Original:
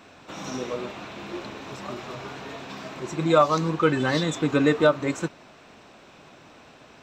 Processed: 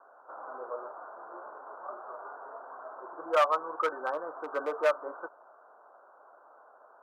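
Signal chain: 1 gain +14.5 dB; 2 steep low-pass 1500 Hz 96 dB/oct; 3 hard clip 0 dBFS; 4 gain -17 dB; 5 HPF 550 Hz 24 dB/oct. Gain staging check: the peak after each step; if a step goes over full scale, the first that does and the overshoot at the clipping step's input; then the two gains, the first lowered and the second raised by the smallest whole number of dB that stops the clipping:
+7.0, +7.5, 0.0, -17.0, -14.0 dBFS; step 1, 7.5 dB; step 1 +6.5 dB, step 4 -9 dB

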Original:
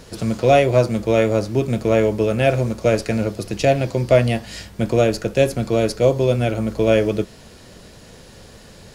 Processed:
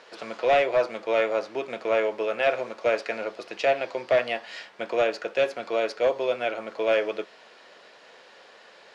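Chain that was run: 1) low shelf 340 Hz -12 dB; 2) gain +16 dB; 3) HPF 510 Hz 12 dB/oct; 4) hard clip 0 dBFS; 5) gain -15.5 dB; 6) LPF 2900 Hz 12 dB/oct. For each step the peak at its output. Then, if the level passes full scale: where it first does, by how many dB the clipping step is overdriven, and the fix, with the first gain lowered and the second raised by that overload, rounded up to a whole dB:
-5.5, +10.5, +9.0, 0.0, -15.5, -15.0 dBFS; step 2, 9.0 dB; step 2 +7 dB, step 5 -6.5 dB

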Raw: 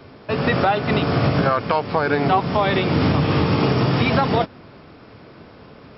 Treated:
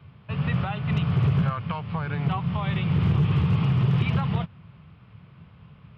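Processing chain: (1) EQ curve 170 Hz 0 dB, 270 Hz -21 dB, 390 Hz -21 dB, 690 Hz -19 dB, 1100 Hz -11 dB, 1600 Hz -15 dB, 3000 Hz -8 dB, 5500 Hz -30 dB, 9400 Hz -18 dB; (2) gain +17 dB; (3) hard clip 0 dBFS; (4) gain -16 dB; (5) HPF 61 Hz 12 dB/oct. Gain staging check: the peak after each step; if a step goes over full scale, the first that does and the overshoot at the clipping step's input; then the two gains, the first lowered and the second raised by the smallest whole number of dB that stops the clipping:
-10.0, +7.0, 0.0, -16.0, -12.0 dBFS; step 2, 7.0 dB; step 2 +10 dB, step 4 -9 dB

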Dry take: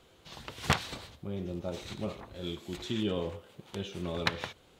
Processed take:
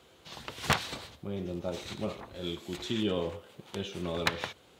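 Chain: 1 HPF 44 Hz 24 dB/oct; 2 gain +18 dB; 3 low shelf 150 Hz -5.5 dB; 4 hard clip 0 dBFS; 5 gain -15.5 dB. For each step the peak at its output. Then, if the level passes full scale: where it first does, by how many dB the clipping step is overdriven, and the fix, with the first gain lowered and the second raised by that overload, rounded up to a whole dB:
-11.0, +7.0, +6.5, 0.0, -15.5 dBFS; step 2, 6.5 dB; step 2 +11 dB, step 5 -8.5 dB

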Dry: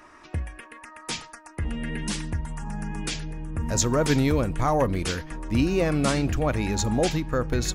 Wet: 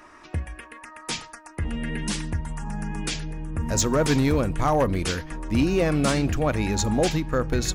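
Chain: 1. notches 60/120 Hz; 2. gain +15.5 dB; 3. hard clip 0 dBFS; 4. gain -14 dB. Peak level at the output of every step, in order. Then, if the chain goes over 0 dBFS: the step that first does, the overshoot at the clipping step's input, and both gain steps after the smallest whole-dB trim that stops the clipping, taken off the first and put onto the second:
-7.5, +8.0, 0.0, -14.0 dBFS; step 2, 8.0 dB; step 2 +7.5 dB, step 4 -6 dB

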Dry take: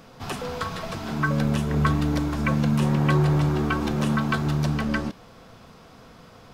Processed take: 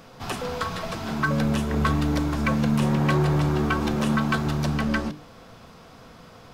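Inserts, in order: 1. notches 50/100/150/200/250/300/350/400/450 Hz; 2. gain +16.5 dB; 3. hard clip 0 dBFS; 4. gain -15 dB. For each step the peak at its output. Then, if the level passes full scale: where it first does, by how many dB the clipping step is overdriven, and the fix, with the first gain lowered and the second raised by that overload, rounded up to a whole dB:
-9.5, +7.0, 0.0, -15.0 dBFS; step 2, 7.0 dB; step 2 +9.5 dB, step 4 -8 dB

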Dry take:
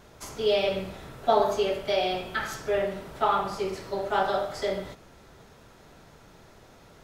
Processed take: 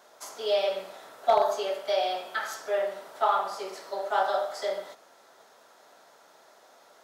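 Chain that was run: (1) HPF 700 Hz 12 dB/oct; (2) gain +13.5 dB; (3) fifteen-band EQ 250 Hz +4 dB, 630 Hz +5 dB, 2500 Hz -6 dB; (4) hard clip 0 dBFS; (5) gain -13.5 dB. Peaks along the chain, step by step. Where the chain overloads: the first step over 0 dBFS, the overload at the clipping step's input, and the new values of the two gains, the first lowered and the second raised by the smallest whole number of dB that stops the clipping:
-14.0, -0.5, +3.0, 0.0, -13.5 dBFS; step 3, 3.0 dB; step 2 +10.5 dB, step 5 -10.5 dB

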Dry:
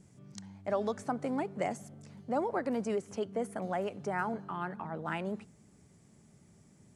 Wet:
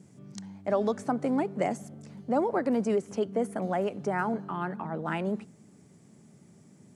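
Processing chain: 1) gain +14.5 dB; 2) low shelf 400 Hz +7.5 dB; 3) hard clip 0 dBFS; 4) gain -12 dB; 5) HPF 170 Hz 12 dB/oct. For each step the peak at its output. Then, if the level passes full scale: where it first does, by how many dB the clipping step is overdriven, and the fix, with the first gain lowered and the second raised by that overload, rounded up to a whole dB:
-5.0, -2.0, -2.0, -14.0, -14.5 dBFS; no overload

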